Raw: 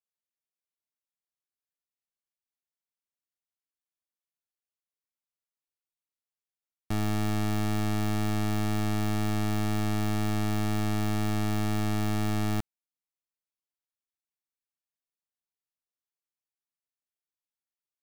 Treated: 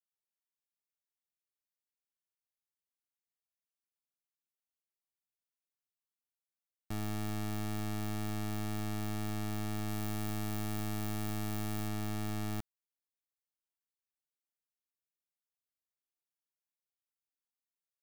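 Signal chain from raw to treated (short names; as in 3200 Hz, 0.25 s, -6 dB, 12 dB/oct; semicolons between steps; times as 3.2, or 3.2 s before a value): high shelf 9000 Hz +7 dB, from 9.88 s +12 dB, from 11.88 s +7 dB; gain -9 dB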